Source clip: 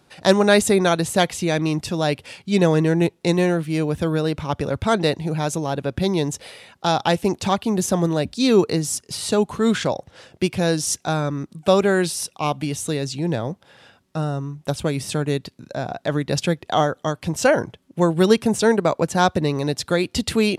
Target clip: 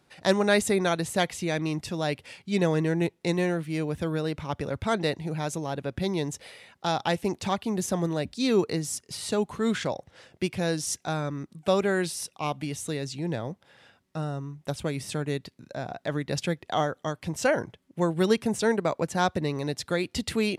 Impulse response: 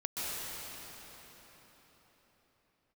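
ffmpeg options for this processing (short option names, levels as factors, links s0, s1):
-af "equalizer=f=2000:w=3.3:g=4,volume=0.422"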